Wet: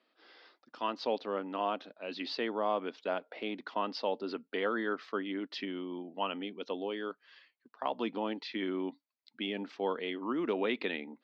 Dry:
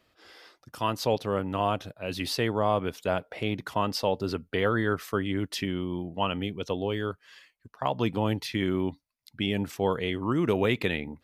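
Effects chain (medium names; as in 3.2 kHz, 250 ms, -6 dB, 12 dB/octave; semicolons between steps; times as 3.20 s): elliptic band-pass 240–4500 Hz, stop band 40 dB; trim -5.5 dB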